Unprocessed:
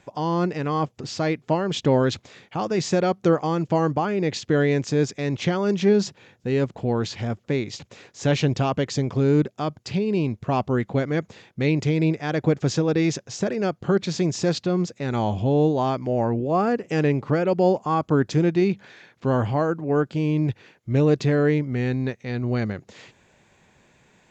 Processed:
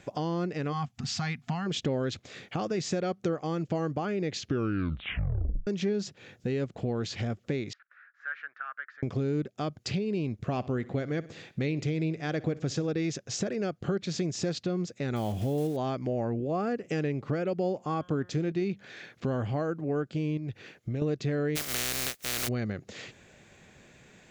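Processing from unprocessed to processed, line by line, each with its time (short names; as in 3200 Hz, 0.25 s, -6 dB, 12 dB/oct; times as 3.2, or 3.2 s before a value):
0.73–1.67 spectral gain 270–680 Hz -20 dB
4.35 tape stop 1.32 s
7.73–9.03 Butterworth band-pass 1500 Hz, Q 3.7
10.33–12.87 feedback echo 62 ms, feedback 50%, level -20.5 dB
15.16–15.78 block floating point 5-bit
17.75–18.52 de-hum 179 Hz, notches 24
20.37–21.02 compressor 3:1, threshold -30 dBFS
21.55–22.47 spectral contrast lowered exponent 0.14
whole clip: bell 940 Hz -8.5 dB 0.38 oct; compressor 3:1, threshold -34 dBFS; gain +3 dB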